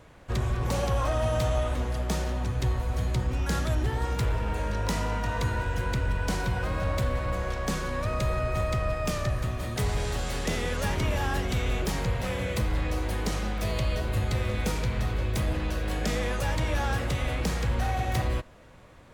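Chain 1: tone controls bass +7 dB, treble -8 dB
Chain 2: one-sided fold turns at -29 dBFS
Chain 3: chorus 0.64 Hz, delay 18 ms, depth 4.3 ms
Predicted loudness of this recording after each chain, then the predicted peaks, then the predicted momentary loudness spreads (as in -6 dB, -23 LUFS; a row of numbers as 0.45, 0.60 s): -24.0, -31.5, -32.0 LUFS; -12.0, -19.0, -19.0 dBFS; 3, 2, 3 LU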